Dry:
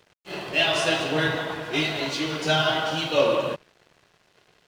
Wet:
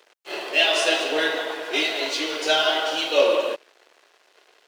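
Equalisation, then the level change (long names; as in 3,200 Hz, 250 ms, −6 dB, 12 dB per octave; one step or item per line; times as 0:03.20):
high-pass filter 360 Hz 24 dB per octave
dynamic equaliser 1,100 Hz, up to −5 dB, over −39 dBFS, Q 1.2
+4.0 dB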